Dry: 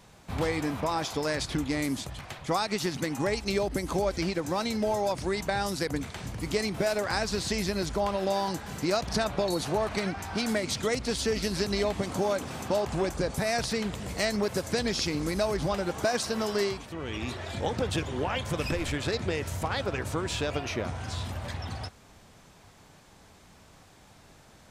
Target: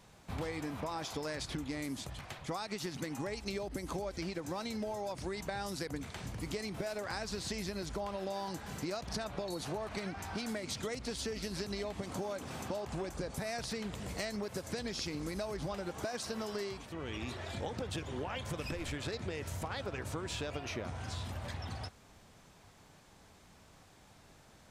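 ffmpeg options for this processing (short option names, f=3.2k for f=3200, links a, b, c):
-af "acompressor=threshold=-30dB:ratio=6,volume=-5dB"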